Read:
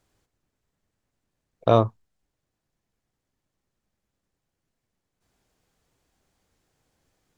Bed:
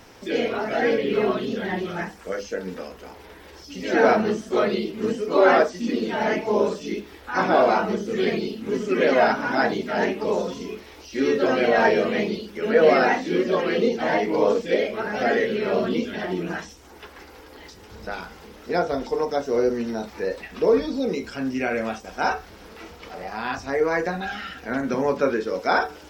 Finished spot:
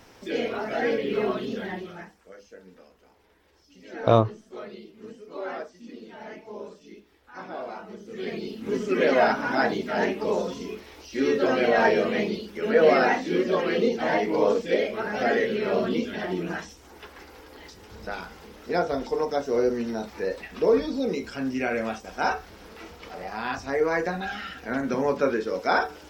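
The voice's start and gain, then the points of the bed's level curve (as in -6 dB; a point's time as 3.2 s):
2.40 s, -0.5 dB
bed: 1.59 s -4 dB
2.29 s -18 dB
7.85 s -18 dB
8.67 s -2 dB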